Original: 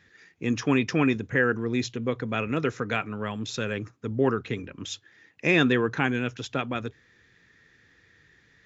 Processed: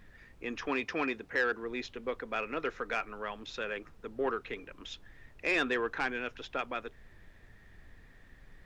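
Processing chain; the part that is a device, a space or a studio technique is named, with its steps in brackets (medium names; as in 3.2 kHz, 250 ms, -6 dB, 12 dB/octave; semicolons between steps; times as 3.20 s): aircraft cabin announcement (band-pass 470–3200 Hz; saturation -17.5 dBFS, distortion -17 dB; brown noise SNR 17 dB); 0.68–1.63 s: high-pass 55 Hz; trim -3 dB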